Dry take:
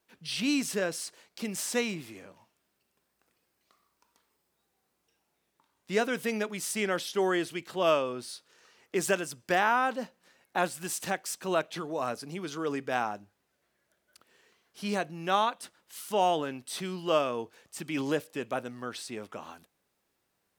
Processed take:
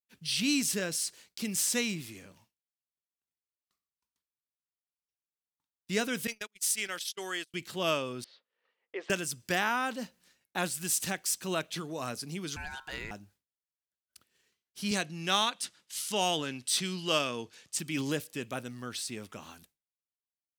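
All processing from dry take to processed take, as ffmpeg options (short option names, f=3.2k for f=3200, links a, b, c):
-filter_complex "[0:a]asettb=1/sr,asplit=3[a][b][c];[a]atrim=end=6.274[d];[b]atrim=start=6.27:end=7.54,asetpts=PTS-STARTPTS,afade=t=in:d=0.004:c=qsin,afade=t=out:st=1.266:d=0.004:c=qsin,highpass=f=1.2k:p=1,agate=range=-35dB:threshold=-39dB:ratio=16:release=100:detection=peak[e];[c]atrim=start=7.536[f];[d][e]acrossfade=d=0.004:c1=hsin:c2=qsin[g];[g][f]acrossfade=d=0.004:c1=qsin:c2=hsin,asettb=1/sr,asplit=3[h][i][j];[h]atrim=end=8.244[k];[i]atrim=start=8.24:end=9.1,asetpts=PTS-STARTPTS,afade=t=in:d=0.004:c=qsin,afade=t=out:st=0.856:d=0.004:c=qsin,aeval=exprs='val(0)+0.00141*(sin(2*PI*50*n/s)+sin(2*PI*2*50*n/s)/2+sin(2*PI*3*50*n/s)/3+sin(2*PI*4*50*n/s)/4+sin(2*PI*5*50*n/s)/5)':c=same,highpass=f=450:w=0.5412,highpass=f=450:w=1.3066,equalizer=f=520:t=q:w=4:g=6,equalizer=f=1.5k:t=q:w=4:g=-7,equalizer=f=2.5k:t=q:w=4:g=-6,lowpass=f=2.6k:w=0.5412,lowpass=f=2.6k:w=1.3066[l];[j]atrim=start=9.096[m];[k][l]acrossfade=d=0.004:c1=hsin:c2=qsin[n];[n][m]acrossfade=d=0.004:c1=qsin:c2=hsin,asettb=1/sr,asplit=3[o][p][q];[o]atrim=end=12.564[r];[p]atrim=start=12.56:end=13.11,asetpts=PTS-STARTPTS,afade=t=in:d=0.004:c=qsin,afade=t=out:st=0.546:d=0.004:c=qsin,acompressor=threshold=-32dB:ratio=2.5:attack=3.2:release=140:knee=1:detection=peak,aeval=exprs='val(0)*sin(2*PI*1200*n/s)':c=same[s];[q]atrim=start=13.106[t];[r][s]acrossfade=d=0.004:c1=hsin:c2=qsin[u];[u][t]acrossfade=d=0.004:c1=qsin:c2=hsin,asettb=1/sr,asplit=3[v][w][x];[v]atrim=end=14.914[y];[w]atrim=start=14.91:end=17.79,asetpts=PTS-STARTPTS,afade=t=in:d=0.004:c=qsin,afade=t=out:st=2.876:d=0.004:c=qsin,highshelf=f=2.3k:g=8.5,adynamicsmooth=sensitivity=3.5:basefreq=7.3k,highpass=100[z];[x]atrim=start=17.786[aa];[y][z]acrossfade=d=0.004:c1=hsin:c2=qsin[ab];[ab][aa]acrossfade=d=0.004:c1=qsin:c2=hsin,agate=range=-33dB:threshold=-56dB:ratio=3:detection=peak,equalizer=f=720:w=0.37:g=-13.5,volume=6.5dB"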